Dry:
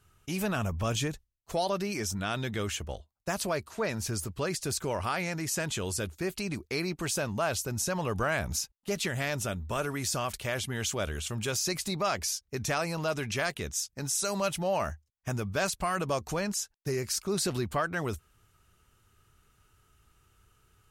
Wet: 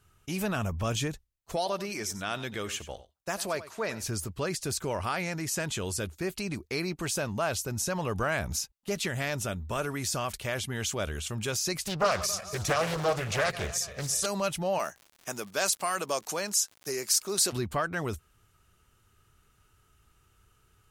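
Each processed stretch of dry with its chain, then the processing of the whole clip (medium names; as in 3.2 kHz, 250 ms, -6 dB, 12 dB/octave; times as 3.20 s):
1.56–4.04 s: bass shelf 200 Hz -10 dB + delay 92 ms -15 dB
11.86–14.26 s: backward echo that repeats 138 ms, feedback 65%, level -13 dB + comb 1.7 ms, depth 76% + loudspeaker Doppler distortion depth 0.87 ms
14.78–17.51 s: high-pass 140 Hz 24 dB/octave + tone controls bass -12 dB, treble +8 dB + crackle 130 per s -40 dBFS
whole clip: none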